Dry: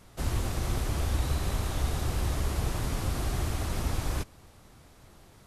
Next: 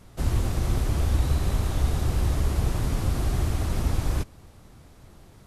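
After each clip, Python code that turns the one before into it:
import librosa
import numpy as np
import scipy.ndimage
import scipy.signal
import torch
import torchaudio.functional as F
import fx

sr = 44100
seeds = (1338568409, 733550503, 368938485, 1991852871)

y = fx.low_shelf(x, sr, hz=440.0, db=6.0)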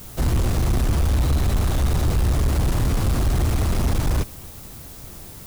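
y = fx.dmg_noise_colour(x, sr, seeds[0], colour='blue', level_db=-51.0)
y = 10.0 ** (-23.0 / 20.0) * np.tanh(y / 10.0 ** (-23.0 / 20.0))
y = F.gain(torch.from_numpy(y), 8.5).numpy()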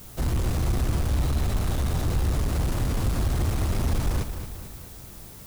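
y = fx.echo_feedback(x, sr, ms=221, feedback_pct=51, wet_db=-9.5)
y = F.gain(torch.from_numpy(y), -5.0).numpy()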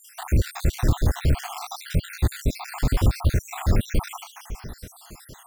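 y = fx.spec_dropout(x, sr, seeds[1], share_pct=65)
y = np.repeat(scipy.signal.resample_poly(y, 1, 2), 2)[:len(y)]
y = F.gain(torch.from_numpy(y), 7.0).numpy()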